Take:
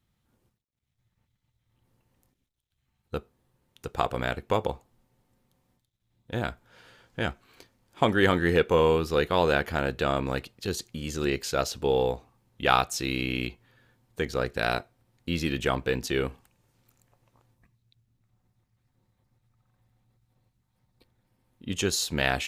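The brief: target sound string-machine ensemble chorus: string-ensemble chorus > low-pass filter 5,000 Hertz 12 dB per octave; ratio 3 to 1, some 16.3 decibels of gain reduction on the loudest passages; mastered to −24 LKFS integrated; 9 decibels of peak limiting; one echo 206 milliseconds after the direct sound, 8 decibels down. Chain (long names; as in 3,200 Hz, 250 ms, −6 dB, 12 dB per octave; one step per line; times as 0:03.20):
downward compressor 3 to 1, threshold −40 dBFS
brickwall limiter −29 dBFS
single-tap delay 206 ms −8 dB
string-ensemble chorus
low-pass filter 5,000 Hz 12 dB per octave
level +22 dB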